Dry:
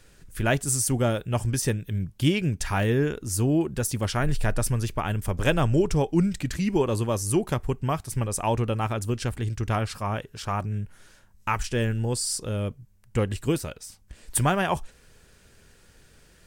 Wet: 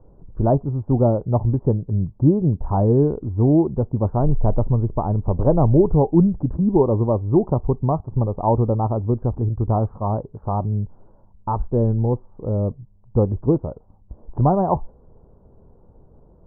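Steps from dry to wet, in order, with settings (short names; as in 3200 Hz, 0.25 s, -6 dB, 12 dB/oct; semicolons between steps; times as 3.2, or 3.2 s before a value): steep low-pass 1000 Hz 48 dB/oct; gain +7 dB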